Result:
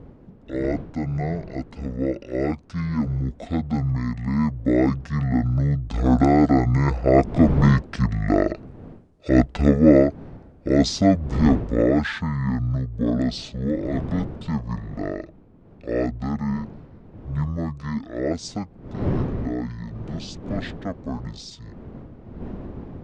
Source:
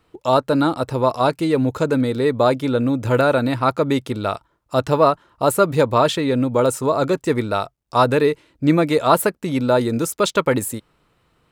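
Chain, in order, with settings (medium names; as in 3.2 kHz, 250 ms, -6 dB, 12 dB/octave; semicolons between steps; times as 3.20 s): Doppler pass-by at 4.11 s, 10 m/s, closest 10 m; wind noise 510 Hz -37 dBFS; speed mistake 15 ips tape played at 7.5 ips; trim +2.5 dB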